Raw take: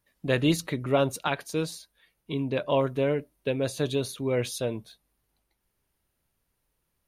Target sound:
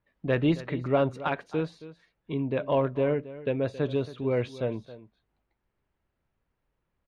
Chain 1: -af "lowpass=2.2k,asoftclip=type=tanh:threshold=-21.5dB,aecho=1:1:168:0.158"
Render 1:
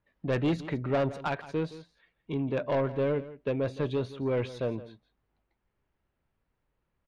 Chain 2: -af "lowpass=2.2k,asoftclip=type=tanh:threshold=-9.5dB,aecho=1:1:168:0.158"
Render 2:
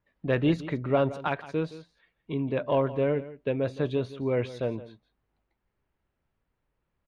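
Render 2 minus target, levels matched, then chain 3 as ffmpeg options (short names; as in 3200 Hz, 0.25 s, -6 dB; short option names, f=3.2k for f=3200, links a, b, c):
echo 0.104 s early
-af "lowpass=2.2k,asoftclip=type=tanh:threshold=-9.5dB,aecho=1:1:272:0.158"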